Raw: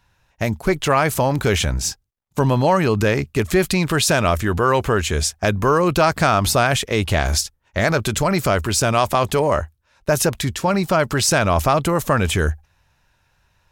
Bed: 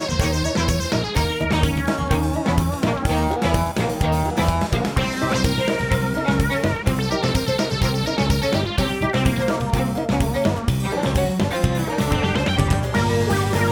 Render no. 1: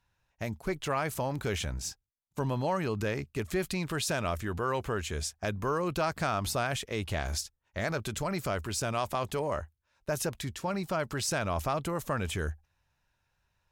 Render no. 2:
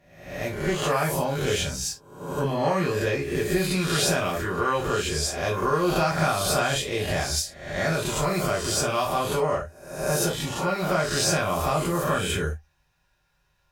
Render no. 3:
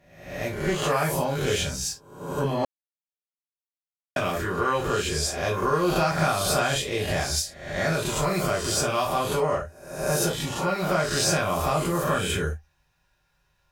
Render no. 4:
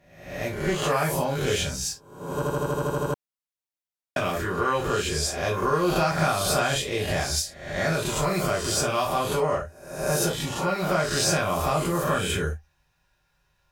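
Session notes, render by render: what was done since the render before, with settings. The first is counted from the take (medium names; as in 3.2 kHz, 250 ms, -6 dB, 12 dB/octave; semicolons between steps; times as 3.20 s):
trim -14 dB
reverse spectral sustain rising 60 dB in 0.75 s; gated-style reverb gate 90 ms falling, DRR -3 dB
2.65–4.16 s: mute
2.34 s: stutter in place 0.08 s, 10 plays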